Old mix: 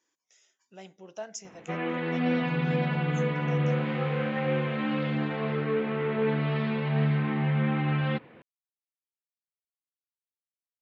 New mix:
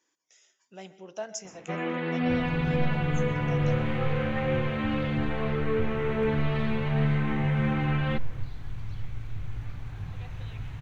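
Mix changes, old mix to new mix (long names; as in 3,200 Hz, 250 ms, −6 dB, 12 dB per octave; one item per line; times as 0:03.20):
second sound: unmuted
reverb: on, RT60 0.40 s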